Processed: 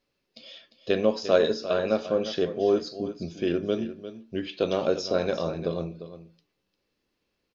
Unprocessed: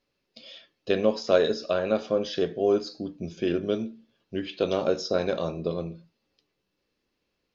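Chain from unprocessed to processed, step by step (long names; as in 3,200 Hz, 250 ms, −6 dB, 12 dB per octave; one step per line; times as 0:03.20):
single-tap delay 350 ms −12.5 dB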